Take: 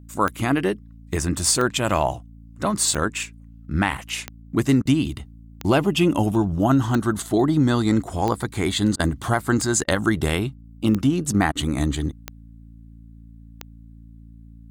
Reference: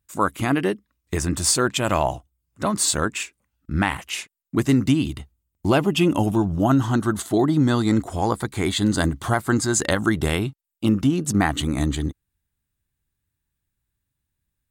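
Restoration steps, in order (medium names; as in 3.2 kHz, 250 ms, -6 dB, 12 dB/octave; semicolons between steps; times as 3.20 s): de-click; de-hum 56.2 Hz, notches 5; interpolate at 4.82/8.96/9.84/11.52 s, 33 ms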